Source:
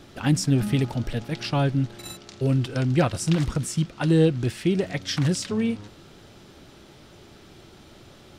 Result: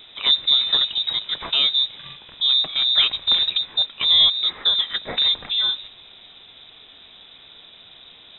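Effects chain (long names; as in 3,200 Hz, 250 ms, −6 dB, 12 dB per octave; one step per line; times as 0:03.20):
voice inversion scrambler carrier 3,800 Hz
level +2.5 dB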